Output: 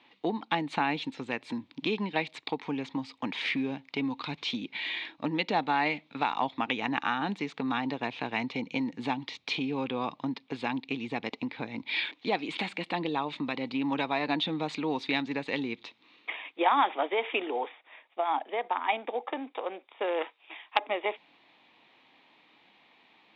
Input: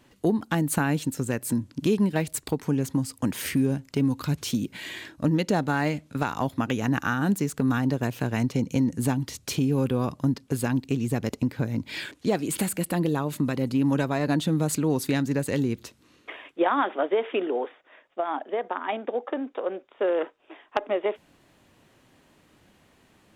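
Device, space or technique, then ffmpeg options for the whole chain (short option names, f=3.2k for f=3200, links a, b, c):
phone earpiece: -filter_complex "[0:a]highpass=370,equalizer=f=390:t=q:w=4:g=-6,equalizer=f=570:t=q:w=4:g=-7,equalizer=f=860:t=q:w=4:g=5,equalizer=f=1.5k:t=q:w=4:g=-7,equalizer=f=2.3k:t=q:w=4:g=8,equalizer=f=3.7k:t=q:w=4:g=8,lowpass=f=3.9k:w=0.5412,lowpass=f=3.9k:w=1.3066,asettb=1/sr,asplit=3[a][b][c];[a]atrim=end=20.224[d];[b]atrim=start=20.22:end=20.79,asetpts=PTS-STARTPTS,afade=t=in:d=0.004:c=qsin,afade=t=out:st=0.566:d=0.004:c=qsin,tiltshelf=f=1.1k:g=-5.5[e];[c]atrim=start=20.786[f];[d][e]acrossfade=d=0.004:c1=hsin:c2=qsin[g];[g][f]acrossfade=d=0.004:c1=qsin:c2=hsin"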